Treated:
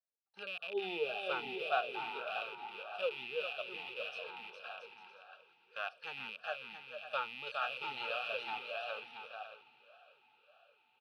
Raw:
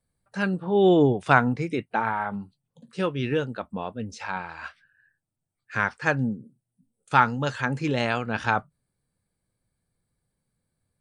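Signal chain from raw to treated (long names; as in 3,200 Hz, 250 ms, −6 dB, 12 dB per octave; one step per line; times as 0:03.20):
loose part that buzzes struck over −36 dBFS, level −18 dBFS
low-shelf EQ 420 Hz +6 dB
phaser with its sweep stopped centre 1,500 Hz, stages 8
feedback delay with all-pass diffusion 818 ms, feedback 55%, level −14.5 dB
noise gate −37 dBFS, range −8 dB
first difference
bouncing-ball delay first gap 410 ms, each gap 0.65×, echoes 5
formant filter swept between two vowels a-u 1.7 Hz
level +15.5 dB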